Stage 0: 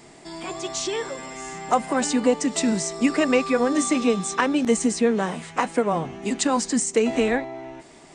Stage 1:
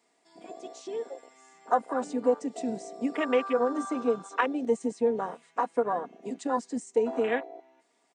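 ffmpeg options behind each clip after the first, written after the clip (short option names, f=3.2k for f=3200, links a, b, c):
-af "highpass=360,afwtdn=0.0501,aecho=1:1:4.2:0.41,volume=-5dB"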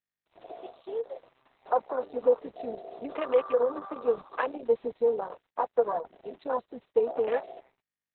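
-af "equalizer=f=250:t=o:w=1:g=-12,equalizer=f=500:t=o:w=1:g=5,equalizer=f=2k:t=o:w=1:g=-7,equalizer=f=4k:t=o:w=1:g=-4,acrusher=bits=8:mix=0:aa=0.5" -ar 48000 -c:a libopus -b:a 6k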